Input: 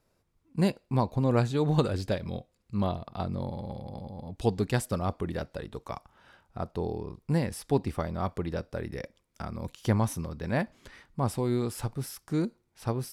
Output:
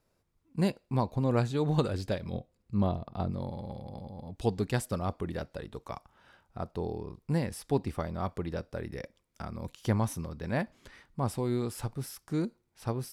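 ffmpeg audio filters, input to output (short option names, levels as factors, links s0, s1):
-filter_complex "[0:a]asettb=1/sr,asplit=3[s0][s1][s2];[s0]atrim=end=2.334[s3];[s1]atrim=start=2.33:end=3.31,asetpts=PTS-STARTPTS,afade=t=in:d=0.004:c=qsin,afade=t=out:st=0.976:d=0.004:c=qsin,tiltshelf=f=930:g=4[s4];[s2]atrim=start=3.306[s5];[s3][s4]acrossfade=d=0.004:c1=hsin:c2=qsin[s6];[s6][s5]acrossfade=d=0.004:c1=qsin:c2=hsin,volume=0.75"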